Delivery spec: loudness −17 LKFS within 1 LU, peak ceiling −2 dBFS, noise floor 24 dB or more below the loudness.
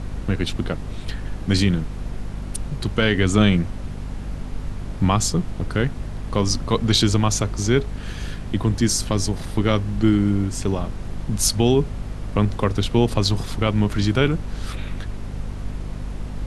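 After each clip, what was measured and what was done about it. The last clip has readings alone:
mains hum 50 Hz; hum harmonics up to 250 Hz; level of the hum −29 dBFS; background noise floor −32 dBFS; target noise floor −46 dBFS; integrated loudness −22.0 LKFS; sample peak −3.0 dBFS; target loudness −17.0 LKFS
→ hum removal 50 Hz, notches 5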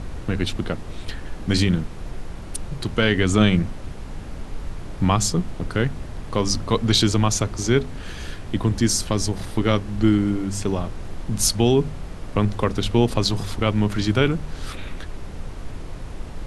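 mains hum none found; background noise floor −35 dBFS; target noise floor −46 dBFS
→ noise reduction from a noise print 11 dB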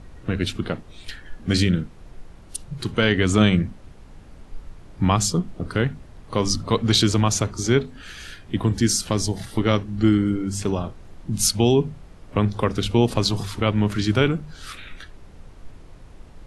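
background noise floor −45 dBFS; target noise floor −46 dBFS
→ noise reduction from a noise print 6 dB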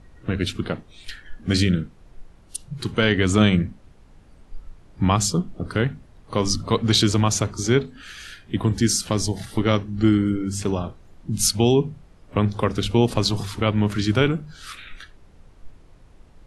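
background noise floor −51 dBFS; integrated loudness −22.0 LKFS; sample peak −3.0 dBFS; target loudness −17.0 LKFS
→ level +5 dB
brickwall limiter −2 dBFS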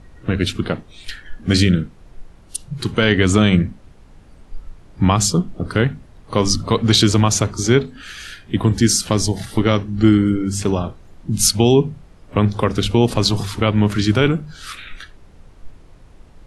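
integrated loudness −17.5 LKFS; sample peak −2.0 dBFS; background noise floor −46 dBFS

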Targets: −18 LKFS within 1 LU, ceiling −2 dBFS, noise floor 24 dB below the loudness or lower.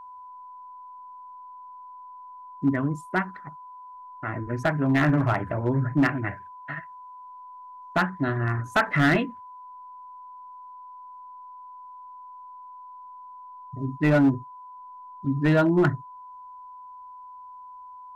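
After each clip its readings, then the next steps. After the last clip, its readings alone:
share of clipped samples 0.6%; peaks flattened at −14.5 dBFS; interfering tone 1,000 Hz; level of the tone −41 dBFS; integrated loudness −25.0 LKFS; sample peak −14.5 dBFS; target loudness −18.0 LKFS
→ clipped peaks rebuilt −14.5 dBFS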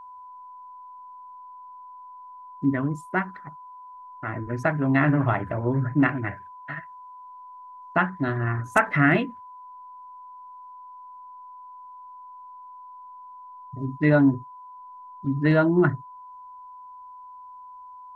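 share of clipped samples 0.0%; interfering tone 1,000 Hz; level of the tone −41 dBFS
→ notch filter 1,000 Hz, Q 30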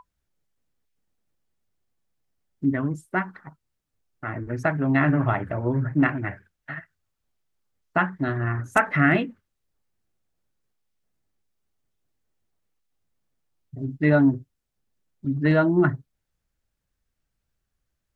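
interfering tone none found; integrated loudness −23.5 LKFS; sample peak −6.0 dBFS; target loudness −18.0 LKFS
→ level +5.5 dB
brickwall limiter −2 dBFS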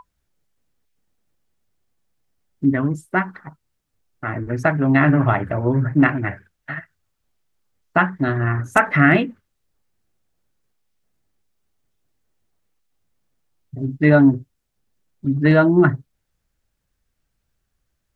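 integrated loudness −18.0 LKFS; sample peak −2.0 dBFS; background noise floor −75 dBFS

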